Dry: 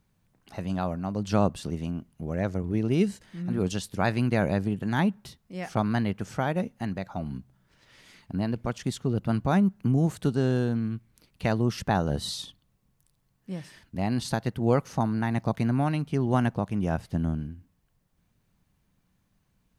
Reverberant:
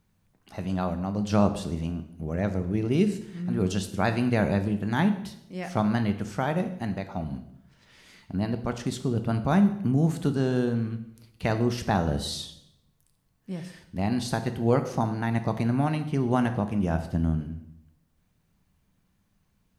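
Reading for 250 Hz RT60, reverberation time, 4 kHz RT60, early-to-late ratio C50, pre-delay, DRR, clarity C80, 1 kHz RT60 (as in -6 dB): 0.95 s, 0.75 s, 0.65 s, 11.0 dB, 4 ms, 7.5 dB, 13.5 dB, 0.70 s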